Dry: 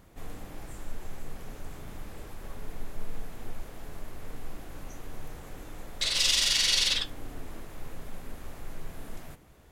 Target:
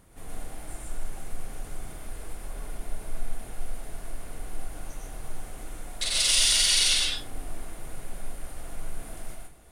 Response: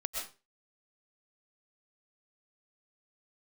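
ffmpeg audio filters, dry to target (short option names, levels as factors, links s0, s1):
-filter_complex "[0:a]equalizer=f=9400:w=3.4:g=15[s0];[1:a]atrim=start_sample=2205,asetrate=48510,aresample=44100[s1];[s0][s1]afir=irnorm=-1:irlink=0"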